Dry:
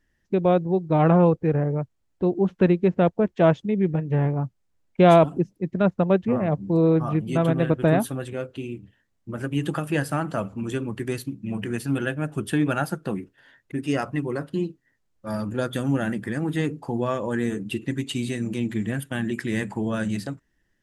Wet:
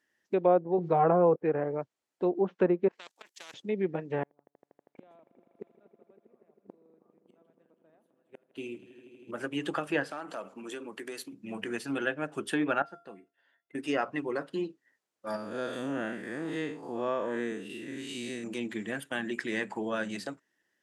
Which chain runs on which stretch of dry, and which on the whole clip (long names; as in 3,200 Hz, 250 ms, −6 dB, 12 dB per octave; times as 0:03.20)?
0:00.78–0:01.36: notch comb filter 300 Hz + envelope flattener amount 70%
0:02.88–0:03.54: first difference + output level in coarse steps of 21 dB + every bin compressed towards the loudest bin 4 to 1
0:04.23–0:09.31: gate with flip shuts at −22 dBFS, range −41 dB + echo that builds up and dies away 80 ms, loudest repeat 5, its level −18 dB + one half of a high-frequency compander decoder only
0:10.10–0:11.33: high-pass filter 230 Hz + downward compressor 5 to 1, threshold −31 dBFS + hard clipping −27 dBFS
0:12.82–0:13.75: low-pass filter 3,500 Hz 6 dB per octave + tuned comb filter 690 Hz, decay 0.33 s, mix 80%
0:15.36–0:18.44: spectrum smeared in time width 145 ms + notch filter 810 Hz, Q 13
whole clip: high-pass filter 370 Hz 12 dB per octave; treble cut that deepens with the level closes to 1,200 Hz, closed at −19 dBFS; level −1.5 dB